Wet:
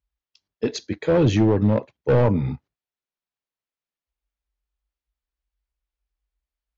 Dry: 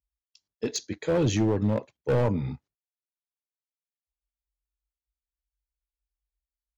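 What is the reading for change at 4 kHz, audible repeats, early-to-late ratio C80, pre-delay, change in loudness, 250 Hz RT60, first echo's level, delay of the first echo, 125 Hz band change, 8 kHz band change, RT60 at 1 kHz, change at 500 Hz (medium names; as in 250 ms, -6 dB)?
+2.0 dB, no echo, no reverb, no reverb, +6.0 dB, no reverb, no echo, no echo, +6.5 dB, no reading, no reverb, +6.0 dB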